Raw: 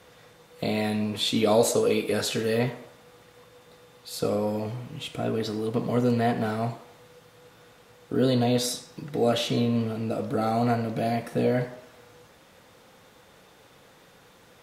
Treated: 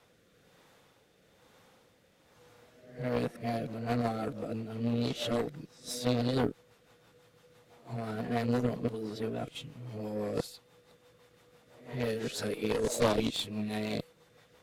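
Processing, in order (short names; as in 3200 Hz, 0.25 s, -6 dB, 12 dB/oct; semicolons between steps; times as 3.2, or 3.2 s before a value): whole clip reversed; added harmonics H 6 -7 dB, 8 -10 dB, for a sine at -8.5 dBFS; rotary speaker horn 1.1 Hz, later 6 Hz, at 2.91; gain -6.5 dB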